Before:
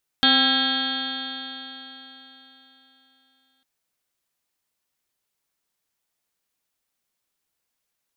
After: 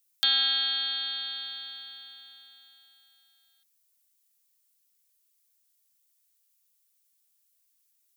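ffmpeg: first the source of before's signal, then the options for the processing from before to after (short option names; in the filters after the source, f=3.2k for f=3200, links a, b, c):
-f lavfi -i "aevalsrc='0.0794*pow(10,-3*t/3.8)*sin(2*PI*260.3*t)+0.0178*pow(10,-3*t/3.8)*sin(2*PI*522.39*t)+0.0531*pow(10,-3*t/3.8)*sin(2*PI*788.03*t)+0.0112*pow(10,-3*t/3.8)*sin(2*PI*1058.96*t)+0.0473*pow(10,-3*t/3.8)*sin(2*PI*1336.85*t)+0.0794*pow(10,-3*t/3.8)*sin(2*PI*1623.3*t)+0.02*pow(10,-3*t/3.8)*sin(2*PI*1919.82*t)+0.0126*pow(10,-3*t/3.8)*sin(2*PI*2227.83*t)+0.0178*pow(10,-3*t/3.8)*sin(2*PI*2548.67*t)+0.0141*pow(10,-3*t/3.8)*sin(2*PI*2883.54*t)+0.141*pow(10,-3*t/3.8)*sin(2*PI*3233.57*t)+0.0891*pow(10,-3*t/3.8)*sin(2*PI*3599.78*t)+0.0316*pow(10,-3*t/3.8)*sin(2*PI*3983.1*t)+0.0631*pow(10,-3*t/3.8)*sin(2*PI*4384.35*t)':d=3.4:s=44100"
-filter_complex "[0:a]highpass=310,aderivative,asplit=2[a][b];[b]acompressor=threshold=-36dB:ratio=6,volume=-1dB[c];[a][c]amix=inputs=2:normalize=0"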